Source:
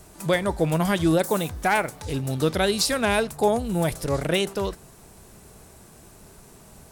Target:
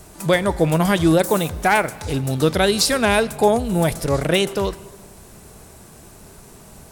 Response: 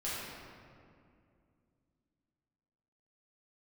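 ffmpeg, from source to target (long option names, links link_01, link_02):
-filter_complex "[0:a]asplit=2[link_01][link_02];[1:a]atrim=start_sample=2205,afade=type=out:start_time=0.43:duration=0.01,atrim=end_sample=19404,adelay=88[link_03];[link_02][link_03]afir=irnorm=-1:irlink=0,volume=-24.5dB[link_04];[link_01][link_04]amix=inputs=2:normalize=0,volume=5dB"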